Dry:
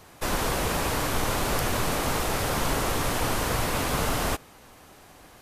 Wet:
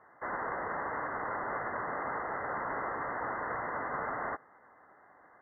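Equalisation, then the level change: band-pass 1500 Hz, Q 0.7; brick-wall FIR low-pass 2100 Hz; air absorption 310 m; -2.0 dB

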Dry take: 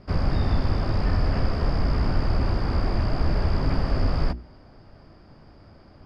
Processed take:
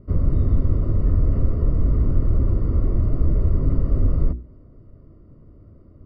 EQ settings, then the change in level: running mean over 54 samples; air absorption 90 m; bell 190 Hz -4.5 dB 0.62 oct; +5.0 dB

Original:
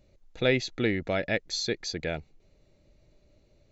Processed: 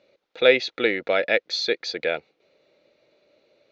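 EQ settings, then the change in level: speaker cabinet 390–5000 Hz, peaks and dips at 500 Hz +7 dB, 1400 Hz +5 dB, 2400 Hz +4 dB, 3600 Hz +4 dB; +5.0 dB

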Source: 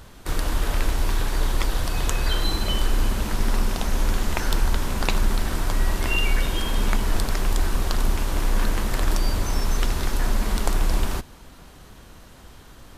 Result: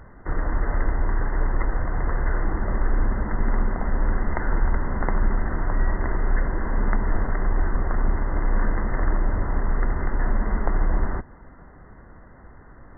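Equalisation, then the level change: brick-wall FIR low-pass 2100 Hz; 0.0 dB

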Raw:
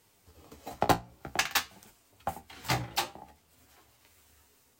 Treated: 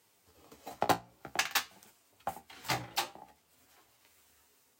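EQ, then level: HPF 73 Hz; low shelf 210 Hz -7.5 dB; -2.5 dB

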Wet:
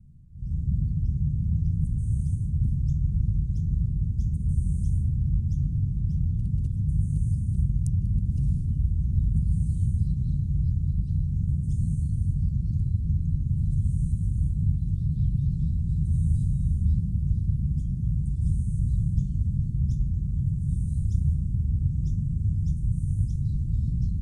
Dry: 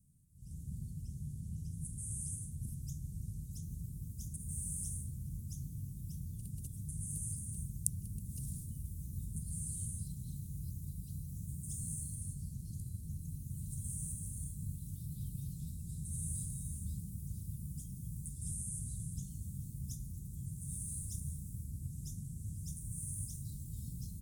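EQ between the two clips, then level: LPF 4600 Hz 12 dB/oct; tilt -3 dB/oct; +8.0 dB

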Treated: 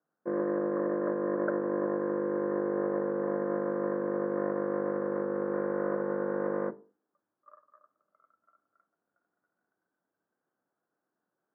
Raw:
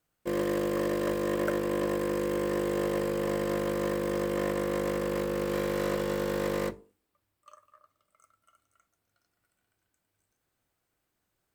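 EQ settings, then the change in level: HPF 180 Hz 24 dB/oct; elliptic low-pass 1600 Hz, stop band 60 dB; air absorption 140 m; 0.0 dB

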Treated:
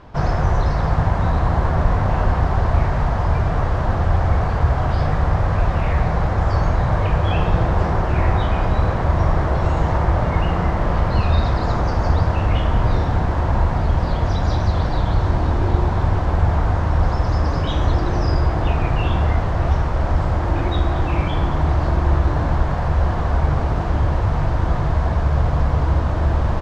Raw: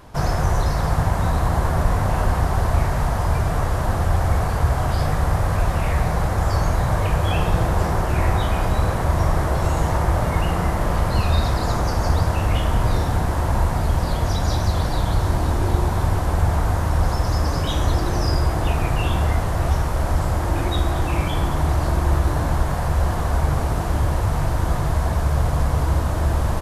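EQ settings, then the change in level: air absorption 170 m; +2.0 dB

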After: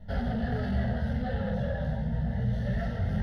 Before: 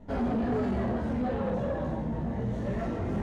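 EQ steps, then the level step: band shelf 610 Hz -8.5 dB 2.6 oct; fixed phaser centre 1600 Hz, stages 8; notch 3900 Hz, Q 21; +6.5 dB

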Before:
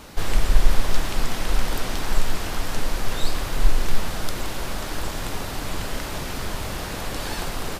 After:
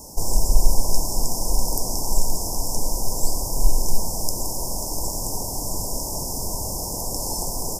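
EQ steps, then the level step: Chebyshev band-stop 980–5200 Hz, order 5; high shelf 2100 Hz +11.5 dB; 0.0 dB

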